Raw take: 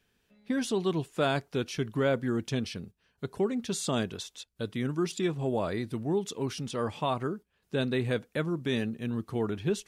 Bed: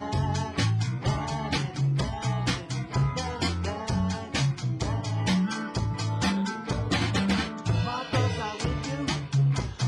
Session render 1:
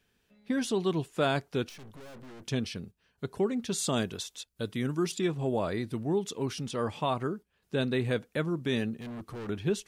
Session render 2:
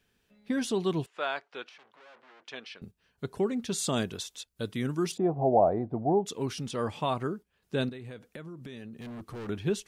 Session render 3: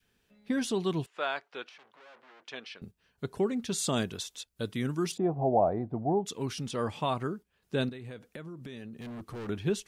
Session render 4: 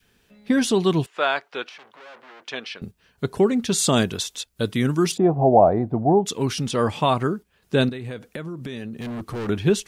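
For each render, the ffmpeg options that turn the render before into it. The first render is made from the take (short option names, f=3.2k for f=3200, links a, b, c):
-filter_complex "[0:a]asettb=1/sr,asplit=3[a][b][c];[a]atrim=end=1.694[d];[b]atrim=start=1.69:end=2.46,asetpts=PTS-STARTPTS,afade=t=in:d=0.004:c=qsin,afade=t=out:st=0.766:d=0.004:c=qsin,aeval=exprs='(tanh(224*val(0)+0.5)-tanh(0.5))/224':c=same[e];[c]atrim=start=2.456[f];[d][e]acrossfade=d=0.004:c1=hsin:c2=qsin[g];[g][f]acrossfade=d=0.004:c1=qsin:c2=hsin,asettb=1/sr,asplit=3[h][i][j];[h]atrim=end=3.784[k];[i]atrim=start=3.78:end=5.15,asetpts=PTS-STARTPTS,afade=t=in:d=0.004:c=qsin,afade=t=out:st=1.366:d=0.004:c=qsin,highshelf=f=6.7k:g=6[l];[j]atrim=start=5.146[m];[k][l]acrossfade=d=0.004:c1=hsin:c2=qsin[n];[n][m]acrossfade=d=0.004:c1=qsin:c2=hsin,asettb=1/sr,asplit=3[o][p][q];[o]atrim=end=8.974[r];[p]atrim=start=8.97:end=9.49,asetpts=PTS-STARTPTS,afade=t=in:d=0.004:c=qsin,afade=t=out:st=0.516:d=0.004:c=qsin,asoftclip=type=hard:threshold=-37.5dB[s];[q]atrim=start=9.486[t];[r][s]acrossfade=d=0.004:c1=hsin:c2=qsin[u];[u][t]acrossfade=d=0.004:c1=qsin:c2=hsin"
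-filter_complex "[0:a]asettb=1/sr,asplit=3[a][b][c];[a]atrim=end=1.064[d];[b]atrim=start=1.06:end=2.82,asetpts=PTS-STARTPTS,afade=t=in:d=0.004:c=qsin,afade=t=out:st=1.756:d=0.004:c=qsin,highpass=780,lowpass=3.1k[e];[c]atrim=start=2.816[f];[d][e]acrossfade=d=0.004:c1=hsin:c2=qsin[g];[g][f]acrossfade=d=0.004:c1=qsin:c2=hsin,asplit=3[h][i][j];[h]afade=t=out:st=5.16:d=0.02[k];[i]lowpass=f=730:t=q:w=6.7,afade=t=in:st=5.16:d=0.02,afade=t=out:st=6.25:d=0.02[l];[j]afade=t=in:st=6.25:d=0.02[m];[k][l][m]amix=inputs=3:normalize=0,asettb=1/sr,asplit=3[n][o][p];[n]atrim=end=7.894[q];[o]atrim=start=7.89:end=9.3,asetpts=PTS-STARTPTS,afade=t=in:d=0.004:c=qsin,afade=t=out:st=1.406:d=0.004:c=qsin,acompressor=threshold=-39dB:ratio=12:attack=3.2:release=140:knee=1:detection=peak[r];[p]atrim=start=9.296[s];[q][r]acrossfade=d=0.004:c1=hsin:c2=qsin[t];[t][s]acrossfade=d=0.004:c1=qsin:c2=hsin"
-af "adynamicequalizer=threshold=0.0126:dfrequency=490:dqfactor=0.77:tfrequency=490:tqfactor=0.77:attack=5:release=100:ratio=0.375:range=2:mode=cutabove:tftype=bell"
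-af "volume=10.5dB"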